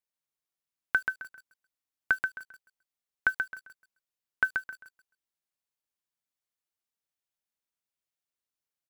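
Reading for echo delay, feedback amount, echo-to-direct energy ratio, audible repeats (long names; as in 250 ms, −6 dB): 132 ms, 26%, −5.0 dB, 3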